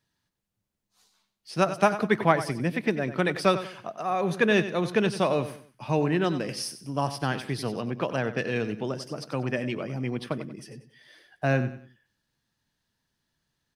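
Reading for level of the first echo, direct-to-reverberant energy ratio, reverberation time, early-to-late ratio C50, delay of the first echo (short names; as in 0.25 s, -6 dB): -12.5 dB, none, none, none, 94 ms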